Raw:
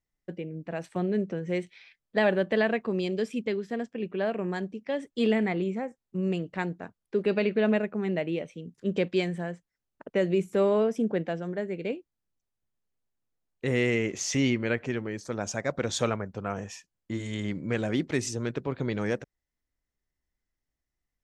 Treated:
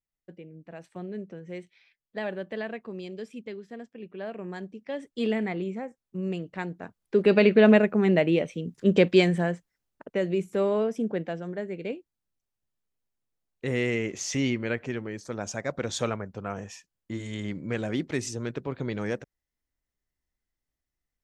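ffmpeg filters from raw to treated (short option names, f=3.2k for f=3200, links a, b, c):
-af "volume=7.5dB,afade=t=in:st=4.09:d=1.04:silence=0.473151,afade=t=in:st=6.7:d=0.77:silence=0.316228,afade=t=out:st=9.46:d=0.65:silence=0.354813"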